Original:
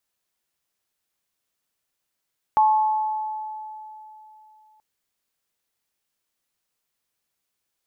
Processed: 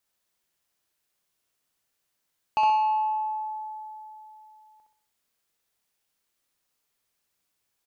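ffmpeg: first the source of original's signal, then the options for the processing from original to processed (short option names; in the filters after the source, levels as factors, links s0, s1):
-f lavfi -i "aevalsrc='0.224*pow(10,-3*t/3.18)*sin(2*PI*863*t)+0.0596*pow(10,-3*t/1.75)*sin(2*PI*1090*t)':d=2.23:s=44100"
-filter_complex "[0:a]asoftclip=type=tanh:threshold=0.106,asplit=2[s0][s1];[s1]aecho=0:1:64|128|192|256|320:0.631|0.271|0.117|0.0502|0.0216[s2];[s0][s2]amix=inputs=2:normalize=0"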